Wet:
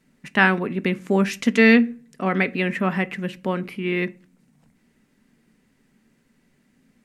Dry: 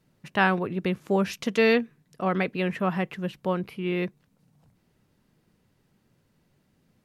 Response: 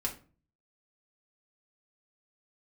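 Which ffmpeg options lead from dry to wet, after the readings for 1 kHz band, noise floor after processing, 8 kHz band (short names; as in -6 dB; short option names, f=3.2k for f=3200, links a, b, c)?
+2.0 dB, -65 dBFS, n/a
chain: -filter_complex "[0:a]equalizer=f=125:t=o:w=1:g=-5,equalizer=f=250:t=o:w=1:g=9,equalizer=f=2k:t=o:w=1:g=10,equalizer=f=8k:t=o:w=1:g=8,asplit=2[a][b];[1:a]atrim=start_sample=2205,lowshelf=f=440:g=6[c];[b][c]afir=irnorm=-1:irlink=0,volume=-13.5dB[d];[a][d]amix=inputs=2:normalize=0,volume=-2.5dB"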